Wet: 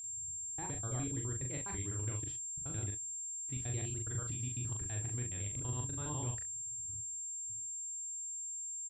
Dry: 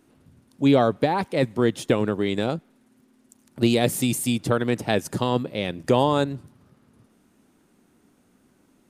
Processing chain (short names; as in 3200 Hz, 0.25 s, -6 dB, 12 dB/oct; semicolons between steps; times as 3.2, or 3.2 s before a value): slices in reverse order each 83 ms, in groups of 7; gate with hold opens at -49 dBFS; low-pass opened by the level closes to 2100 Hz, open at -19 dBFS; EQ curve 110 Hz 0 dB, 210 Hz -25 dB, 320 Hz -15 dB, 530 Hz -26 dB, 1600 Hz -14 dB, 2800 Hz -15 dB, 15000 Hz -25 dB; limiter -32 dBFS, peak gain reduction 10.5 dB; air absorption 160 m; whine 7400 Hz -40 dBFS; on a send: early reflections 29 ms -12 dB, 40 ms -3.5 dB, 66 ms -15 dB; on the sum: gain -2.5 dB